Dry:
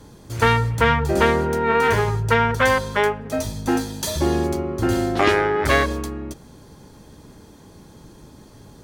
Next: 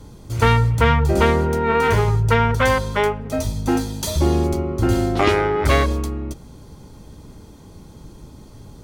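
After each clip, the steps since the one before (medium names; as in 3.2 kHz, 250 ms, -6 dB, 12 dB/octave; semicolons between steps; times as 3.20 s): bass shelf 110 Hz +10 dB; band-stop 1.7 kHz, Q 8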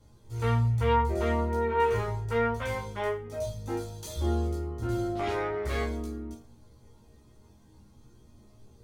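chord resonator D#2 sus4, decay 0.34 s; chorus voices 4, 0.37 Hz, delay 16 ms, depth 1.6 ms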